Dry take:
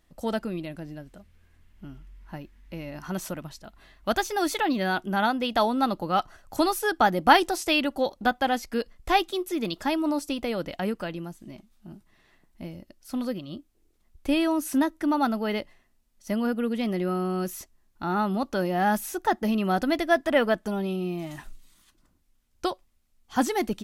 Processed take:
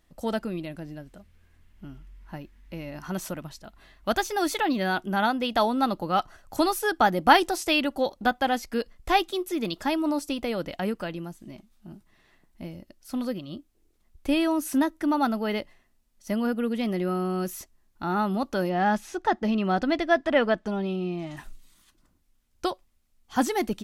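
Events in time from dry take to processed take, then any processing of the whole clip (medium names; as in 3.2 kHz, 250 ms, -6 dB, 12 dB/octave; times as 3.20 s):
18.69–21.37 s: low-pass 5.4 kHz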